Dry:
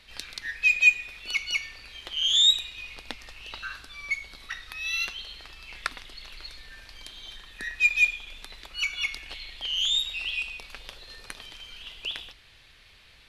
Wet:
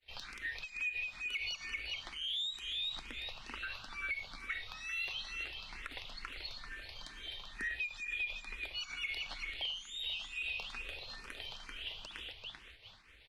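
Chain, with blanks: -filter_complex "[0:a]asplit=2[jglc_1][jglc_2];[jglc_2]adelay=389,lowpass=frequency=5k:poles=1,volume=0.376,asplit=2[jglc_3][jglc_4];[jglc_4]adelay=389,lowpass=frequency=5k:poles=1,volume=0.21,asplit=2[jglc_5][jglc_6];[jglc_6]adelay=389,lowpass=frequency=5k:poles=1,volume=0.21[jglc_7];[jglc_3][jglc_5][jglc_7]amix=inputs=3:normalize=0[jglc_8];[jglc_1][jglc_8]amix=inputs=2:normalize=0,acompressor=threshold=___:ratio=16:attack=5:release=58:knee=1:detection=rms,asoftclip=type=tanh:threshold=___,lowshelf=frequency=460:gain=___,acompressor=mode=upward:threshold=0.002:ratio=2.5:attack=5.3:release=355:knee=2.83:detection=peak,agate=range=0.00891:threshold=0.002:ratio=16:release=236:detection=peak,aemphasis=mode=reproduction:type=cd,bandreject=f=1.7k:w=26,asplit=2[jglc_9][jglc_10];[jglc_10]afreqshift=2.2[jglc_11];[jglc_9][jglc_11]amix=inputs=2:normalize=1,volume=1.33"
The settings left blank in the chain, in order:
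0.0224, 0.0447, -2.5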